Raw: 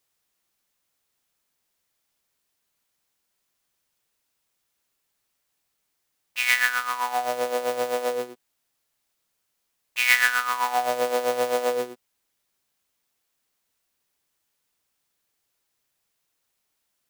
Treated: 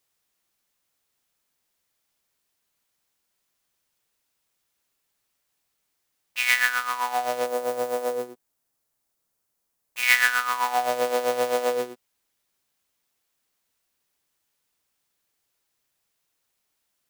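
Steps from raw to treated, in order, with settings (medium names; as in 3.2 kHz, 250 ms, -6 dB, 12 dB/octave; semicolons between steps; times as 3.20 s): 7.46–10.03 s: peaking EQ 2.9 kHz -7.5 dB 2 oct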